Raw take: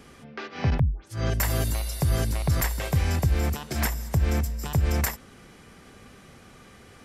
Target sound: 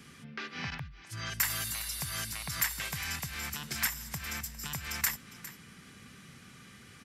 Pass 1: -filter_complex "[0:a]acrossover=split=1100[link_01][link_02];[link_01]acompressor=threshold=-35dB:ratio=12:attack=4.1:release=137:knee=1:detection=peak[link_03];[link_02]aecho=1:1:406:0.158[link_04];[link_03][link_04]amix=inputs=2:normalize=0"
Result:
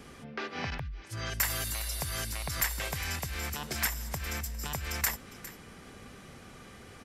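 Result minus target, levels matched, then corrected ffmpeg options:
125 Hz band +3.5 dB
-filter_complex "[0:a]acrossover=split=1100[link_01][link_02];[link_01]acompressor=threshold=-35dB:ratio=12:attack=4.1:release=137:knee=1:detection=peak,bandpass=frequency=160:width_type=q:width=1.3:csg=0[link_03];[link_02]aecho=1:1:406:0.158[link_04];[link_03][link_04]amix=inputs=2:normalize=0"

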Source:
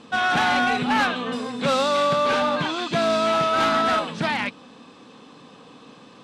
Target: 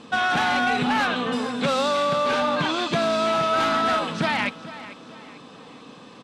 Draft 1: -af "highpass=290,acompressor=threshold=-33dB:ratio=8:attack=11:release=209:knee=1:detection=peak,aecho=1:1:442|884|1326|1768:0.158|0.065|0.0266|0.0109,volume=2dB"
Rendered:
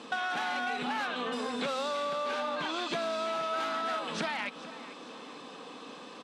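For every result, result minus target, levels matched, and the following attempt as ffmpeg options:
downward compressor: peak gain reduction +11 dB; 250 Hz band −2.0 dB
-af "highpass=290,acompressor=threshold=-21dB:ratio=8:attack=11:release=209:knee=1:detection=peak,aecho=1:1:442|884|1326|1768:0.158|0.065|0.0266|0.0109,volume=2dB"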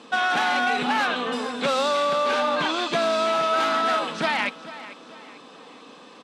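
250 Hz band −4.0 dB
-af "acompressor=threshold=-21dB:ratio=8:attack=11:release=209:knee=1:detection=peak,aecho=1:1:442|884|1326|1768:0.158|0.065|0.0266|0.0109,volume=2dB"

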